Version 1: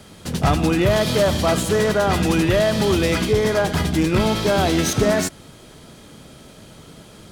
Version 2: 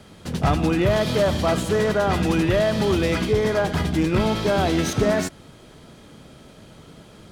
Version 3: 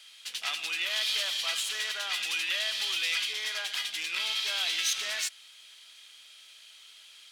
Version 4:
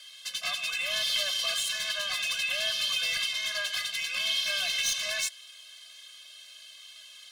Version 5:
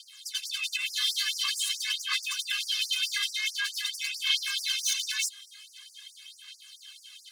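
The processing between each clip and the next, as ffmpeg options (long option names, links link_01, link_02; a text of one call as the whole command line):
ffmpeg -i in.wav -af "highshelf=frequency=5000:gain=-7.5,volume=-2dB" out.wav
ffmpeg -i in.wav -af "highpass=frequency=2900:width_type=q:width=1.7" out.wav
ffmpeg -i in.wav -af "asoftclip=type=tanh:threshold=-25.5dB,afftfilt=real='re*eq(mod(floor(b*sr/1024/250),2),0)':imag='im*eq(mod(floor(b*sr/1024/250),2),0)':win_size=1024:overlap=0.75,volume=6.5dB" out.wav
ffmpeg -i in.wav -af "aphaser=in_gain=1:out_gain=1:delay=2.5:decay=0.51:speed=0.46:type=sinusoidal,afftfilt=real='re*gte(b*sr/1024,920*pow(4800/920,0.5+0.5*sin(2*PI*4.6*pts/sr)))':imag='im*gte(b*sr/1024,920*pow(4800/920,0.5+0.5*sin(2*PI*4.6*pts/sr)))':win_size=1024:overlap=0.75" out.wav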